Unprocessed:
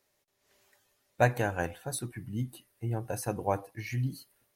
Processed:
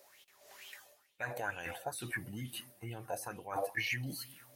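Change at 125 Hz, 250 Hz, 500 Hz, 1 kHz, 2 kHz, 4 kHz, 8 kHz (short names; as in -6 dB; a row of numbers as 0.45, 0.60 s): -12.5, -9.5, -9.5, -7.5, -1.0, +4.0, -5.0 dB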